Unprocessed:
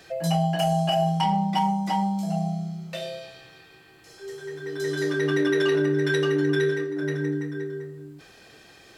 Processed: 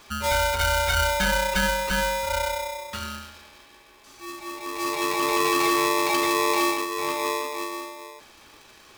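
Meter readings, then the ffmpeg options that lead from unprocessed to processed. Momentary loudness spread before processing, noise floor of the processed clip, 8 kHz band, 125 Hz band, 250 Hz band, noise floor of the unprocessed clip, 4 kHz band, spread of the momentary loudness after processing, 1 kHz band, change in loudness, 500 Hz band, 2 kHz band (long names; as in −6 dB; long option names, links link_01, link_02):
15 LU, −52 dBFS, +12.5 dB, −8.5 dB, −5.0 dB, −52 dBFS, +5.5 dB, 16 LU, +3.0 dB, +1.0 dB, −2.0 dB, +5.5 dB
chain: -af "aeval=exprs='val(0)*sgn(sin(2*PI*740*n/s))':channel_layout=same"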